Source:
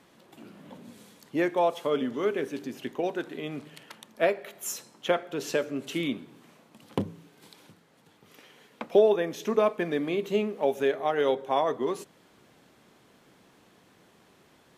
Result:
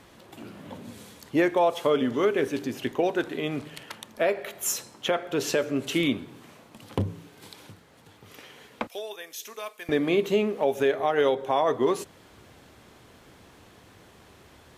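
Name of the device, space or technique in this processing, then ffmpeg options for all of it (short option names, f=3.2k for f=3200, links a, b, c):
car stereo with a boomy subwoofer: -filter_complex "[0:a]asettb=1/sr,asplit=3[a][b][c];[a]atrim=end=8.874[d];[b]atrim=start=8.87:end=9.89,asetpts=PTS-STARTPTS,afade=t=in:d=0.004:c=qsin,afade=t=out:st=1.016:d=0.004:c=qsin,aderivative[e];[c]atrim=start=9.886[f];[d][e]acrossfade=d=0.004:c1=hsin:c2=qsin[g];[g][f]acrossfade=d=0.004:c1=qsin:c2=hsin,lowshelf=f=120:t=q:w=1.5:g=8.5,alimiter=limit=-19.5dB:level=0:latency=1:release=155,volume=6.5dB"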